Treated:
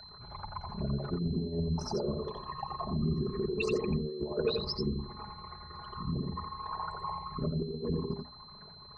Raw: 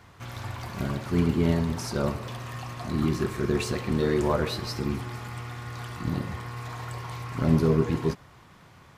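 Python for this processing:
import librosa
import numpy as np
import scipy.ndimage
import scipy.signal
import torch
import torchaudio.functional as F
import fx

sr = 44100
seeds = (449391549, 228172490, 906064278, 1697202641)

y = fx.envelope_sharpen(x, sr, power=3.0)
y = fx.peak_eq(y, sr, hz=560.0, db=9.0, octaves=2.6)
y = fx.hum_notches(y, sr, base_hz=60, count=5)
y = y + 0.63 * np.pad(y, (int(4.8 * sr / 1000.0), 0))[:len(y)]
y = fx.over_compress(y, sr, threshold_db=-20.0, ratio=-0.5)
y = fx.peak_eq(y, sr, hz=260.0, db=-9.0, octaves=1.1)
y = y + 10.0 ** (-42.0 / 20.0) * np.sin(2.0 * np.pi * 4100.0 * np.arange(len(y)) / sr)
y = y + 10.0 ** (-6.0 / 20.0) * np.pad(y, (int(87 * sr / 1000.0), 0))[:len(y)]
y = y * librosa.db_to_amplitude(-6.5)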